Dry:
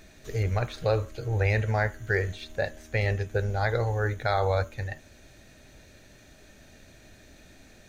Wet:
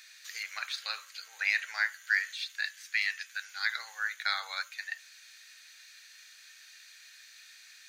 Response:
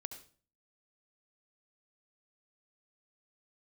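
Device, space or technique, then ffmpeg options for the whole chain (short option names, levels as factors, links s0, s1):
headphones lying on a table: -filter_complex "[0:a]asettb=1/sr,asplit=3[s0][s1][s2];[s0]atrim=end=2.334[s3];[s1]atrim=start=2.33:end=3.76,asetpts=PTS-STARTPTS,afade=t=in:d=0.004:c=qsin,afade=t=out:st=1.426:d=0.004:c=qsin,highpass=1100[s4];[s2]atrim=start=3.756[s5];[s3][s4]acrossfade=d=0.004:c1=hsin:c2=qsin[s6];[s6][s5]acrossfade=d=0.004:c1=qsin:c2=hsin,highpass=f=1500:w=0.5412,highpass=f=1500:w=1.3066,equalizer=f=4600:t=o:w=0.36:g=6.5,volume=1.5"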